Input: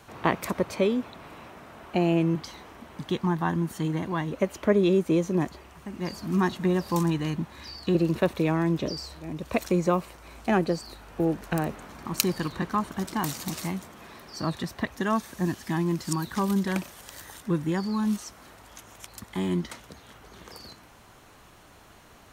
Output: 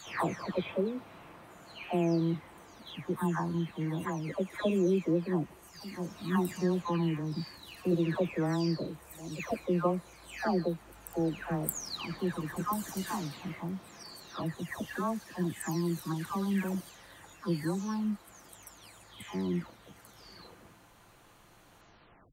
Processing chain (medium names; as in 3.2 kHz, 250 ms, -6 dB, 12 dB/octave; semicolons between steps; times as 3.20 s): delay that grows with frequency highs early, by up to 510 ms; band-stop 5.3 kHz, Q 22; trim -5 dB